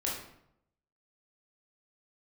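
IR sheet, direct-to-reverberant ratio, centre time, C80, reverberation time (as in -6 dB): -4.5 dB, 47 ms, 7.0 dB, 0.75 s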